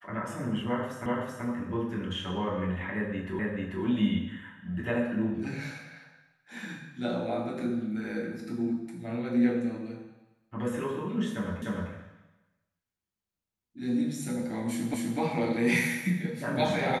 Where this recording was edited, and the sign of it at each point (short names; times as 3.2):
1.06 repeat of the last 0.38 s
3.39 repeat of the last 0.44 s
11.62 repeat of the last 0.3 s
14.94 repeat of the last 0.25 s